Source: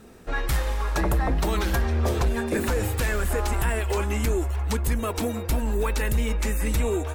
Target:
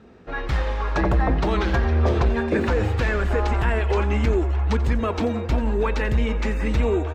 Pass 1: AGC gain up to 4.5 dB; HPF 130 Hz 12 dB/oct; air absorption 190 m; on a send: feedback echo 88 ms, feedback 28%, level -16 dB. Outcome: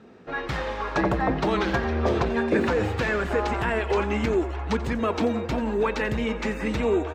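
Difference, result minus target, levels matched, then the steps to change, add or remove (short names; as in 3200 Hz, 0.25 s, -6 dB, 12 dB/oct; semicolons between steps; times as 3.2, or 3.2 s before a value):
125 Hz band -5.5 dB
change: HPF 48 Hz 12 dB/oct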